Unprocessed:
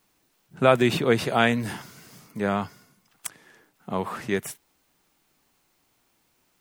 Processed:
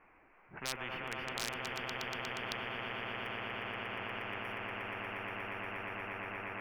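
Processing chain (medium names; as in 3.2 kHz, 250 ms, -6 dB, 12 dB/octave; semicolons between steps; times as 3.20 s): elliptic low-pass 2.4 kHz, stop band 40 dB; peaking EQ 160 Hz -11 dB 1.9 oct; de-hum 79.14 Hz, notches 5; on a send: echo with a slow build-up 119 ms, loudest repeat 8, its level -5.5 dB; on the sum: overload inside the chain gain 10.5 dB; spectrum-flattening compressor 10:1; trim -5.5 dB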